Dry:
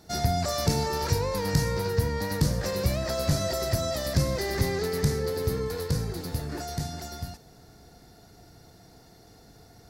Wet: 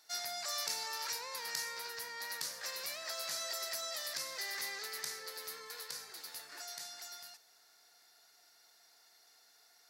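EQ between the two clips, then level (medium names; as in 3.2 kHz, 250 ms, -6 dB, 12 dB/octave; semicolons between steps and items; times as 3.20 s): high-pass 1.4 kHz 12 dB/octave; -4.5 dB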